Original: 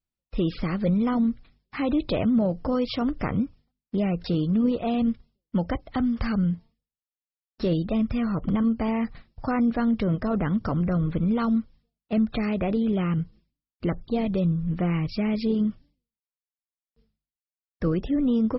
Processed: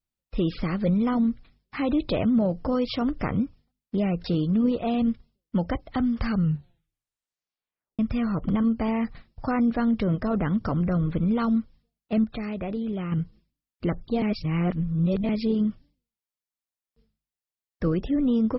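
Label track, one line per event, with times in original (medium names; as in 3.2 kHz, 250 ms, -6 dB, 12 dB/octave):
6.330000	6.330000	tape stop 1.66 s
12.240000	13.120000	gain -5.5 dB
14.220000	15.290000	reverse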